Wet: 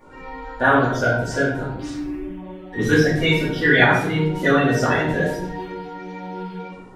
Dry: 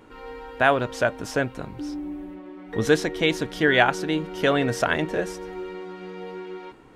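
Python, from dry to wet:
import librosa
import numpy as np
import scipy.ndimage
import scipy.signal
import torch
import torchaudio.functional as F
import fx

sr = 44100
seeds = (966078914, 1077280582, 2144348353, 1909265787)

y = fx.spec_quant(x, sr, step_db=30)
y = fx.room_shoebox(y, sr, seeds[0], volume_m3=170.0, walls='mixed', distance_m=2.5)
y = y * 10.0 ** (-4.5 / 20.0)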